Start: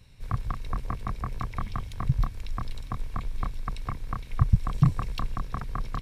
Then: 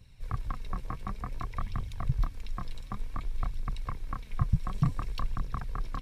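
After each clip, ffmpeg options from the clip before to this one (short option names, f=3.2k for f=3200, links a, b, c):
-af "flanger=delay=0.1:depth=6.4:regen=50:speed=0.55:shape=triangular"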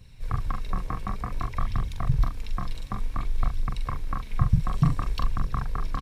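-filter_complex "[0:a]asplit=2[a][b];[b]adelay=43,volume=-6dB[c];[a][c]amix=inputs=2:normalize=0,volume=5dB"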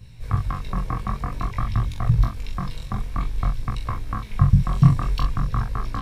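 -af "equalizer=f=120:w=1.1:g=4.5,flanger=delay=18:depth=5.2:speed=0.51,volume=6.5dB"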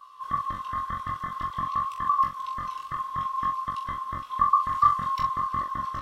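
-af "afftfilt=real='real(if(lt(b,960),b+48*(1-2*mod(floor(b/48),2)),b),0)':imag='imag(if(lt(b,960),b+48*(1-2*mod(floor(b/48),2)),b),0)':win_size=2048:overlap=0.75,volume=-6.5dB"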